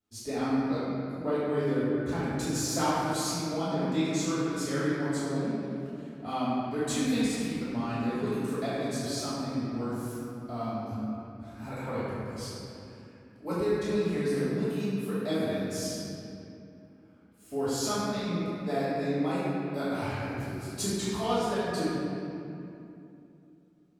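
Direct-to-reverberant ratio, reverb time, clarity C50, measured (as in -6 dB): -16.0 dB, 2.8 s, -5.0 dB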